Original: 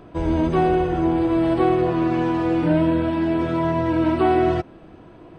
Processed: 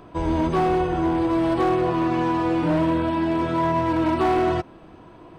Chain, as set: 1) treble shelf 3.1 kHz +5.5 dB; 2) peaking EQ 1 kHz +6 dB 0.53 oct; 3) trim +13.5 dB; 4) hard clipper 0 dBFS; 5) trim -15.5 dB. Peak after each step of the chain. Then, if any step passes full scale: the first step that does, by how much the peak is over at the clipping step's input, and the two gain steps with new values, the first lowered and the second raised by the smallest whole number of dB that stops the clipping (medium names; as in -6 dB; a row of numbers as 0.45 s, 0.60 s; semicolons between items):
-7.0 dBFS, -6.5 dBFS, +7.0 dBFS, 0.0 dBFS, -15.5 dBFS; step 3, 7.0 dB; step 3 +6.5 dB, step 5 -8.5 dB